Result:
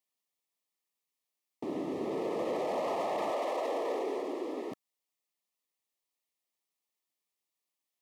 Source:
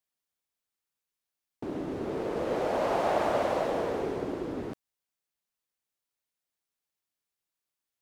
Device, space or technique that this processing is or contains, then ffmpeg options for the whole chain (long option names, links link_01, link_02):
PA system with an anti-feedback notch: -filter_complex "[0:a]highpass=200,asuperstop=centerf=1500:order=8:qfactor=3.6,alimiter=level_in=1.5dB:limit=-24dB:level=0:latency=1:release=14,volume=-1.5dB,asettb=1/sr,asplit=3[link_01][link_02][link_03];[link_01]atrim=end=3.304[link_04];[link_02]atrim=start=3.3:end=4.72,asetpts=PTS-STARTPTS,afade=type=in:duration=0.004:curve=qsin,afade=type=out:start_time=1.416:duration=0.004:curve=qsin,highpass=frequency=290:width=0.5412,highpass=frequency=290:width=1.3066[link_05];[link_03]atrim=start=4.716[link_06];[link_04][link_05]acrossfade=duration=0.004:curve1=hsin:curve2=qsin[link_07];[link_07][link_06]acrossfade=duration=0.004:curve1=qsin:curve2=hsin"